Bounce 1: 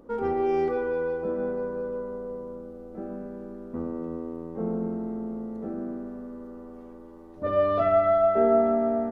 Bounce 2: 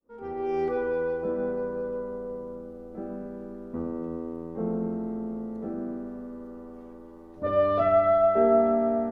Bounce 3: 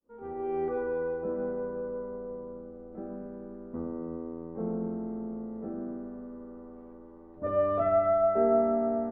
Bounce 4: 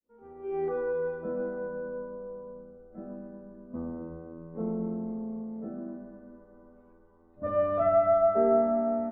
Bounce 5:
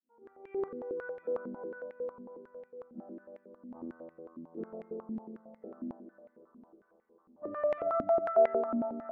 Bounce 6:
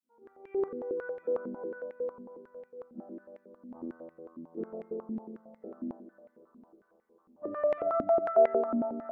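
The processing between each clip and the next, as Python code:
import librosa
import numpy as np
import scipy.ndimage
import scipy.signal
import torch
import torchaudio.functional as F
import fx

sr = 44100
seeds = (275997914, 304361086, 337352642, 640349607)

y1 = fx.fade_in_head(x, sr, length_s=0.8)
y2 = scipy.signal.sosfilt(scipy.signal.butter(2, 1700.0, 'lowpass', fs=sr, output='sos'), y1)
y2 = y2 * librosa.db_to_amplitude(-3.5)
y3 = fx.noise_reduce_blind(y2, sr, reduce_db=10)
y3 = fx.rev_fdn(y3, sr, rt60_s=2.1, lf_ratio=1.6, hf_ratio=0.8, size_ms=27.0, drr_db=9.0)
y4 = fx.spec_box(y3, sr, start_s=0.68, length_s=0.29, low_hz=610.0, high_hz=1500.0, gain_db=-13)
y4 = fx.echo_heads(y4, sr, ms=260, heads='first and third', feedback_pct=61, wet_db=-18.0)
y4 = fx.filter_held_bandpass(y4, sr, hz=11.0, low_hz=250.0, high_hz=2100.0)
y4 = y4 * librosa.db_to_amplitude(3.0)
y5 = fx.dynamic_eq(y4, sr, hz=380.0, q=0.91, threshold_db=-46.0, ratio=4.0, max_db=4)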